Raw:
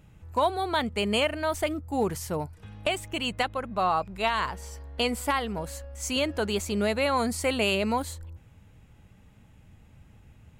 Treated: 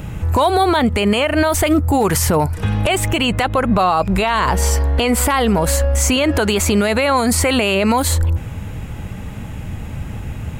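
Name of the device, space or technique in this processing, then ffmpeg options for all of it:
mastering chain: -filter_complex "[0:a]equalizer=frequency=4500:width_type=o:width=1.8:gain=-3,acrossover=split=860|2700[link_01][link_02][link_03];[link_01]acompressor=threshold=-33dB:ratio=4[link_04];[link_02]acompressor=threshold=-35dB:ratio=4[link_05];[link_03]acompressor=threshold=-42dB:ratio=4[link_06];[link_04][link_05][link_06]amix=inputs=3:normalize=0,acompressor=threshold=-38dB:ratio=1.5,asoftclip=type=hard:threshold=-21dB,alimiter=level_in=32dB:limit=-1dB:release=50:level=0:latency=1,volume=-5.5dB"

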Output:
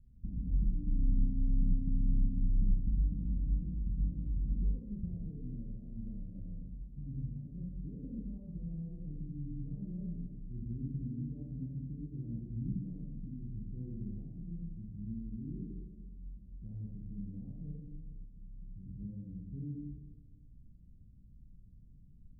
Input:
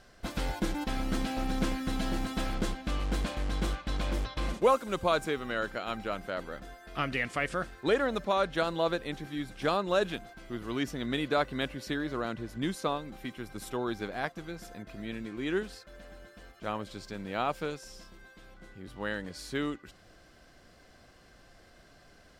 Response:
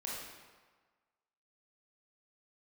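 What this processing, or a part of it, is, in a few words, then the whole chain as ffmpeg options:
club heard from the street: -filter_complex "[0:a]alimiter=limit=-24dB:level=0:latency=1,lowpass=frequency=170:width=0.5412,lowpass=frequency=170:width=1.3066[link_01];[1:a]atrim=start_sample=2205[link_02];[link_01][link_02]afir=irnorm=-1:irlink=0,volume=6.5dB"

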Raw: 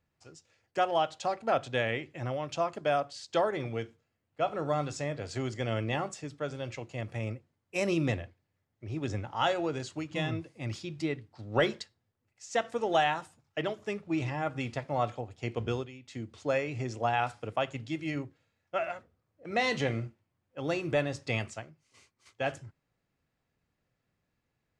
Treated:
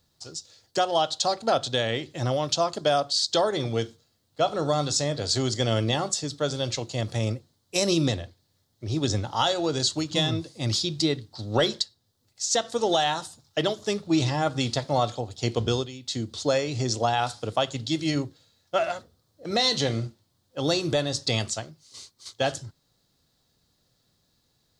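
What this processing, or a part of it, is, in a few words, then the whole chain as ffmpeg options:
over-bright horn tweeter: -af "highshelf=frequency=3100:width_type=q:width=3:gain=8.5,alimiter=limit=-20.5dB:level=0:latency=1:release=411,volume=8.5dB"

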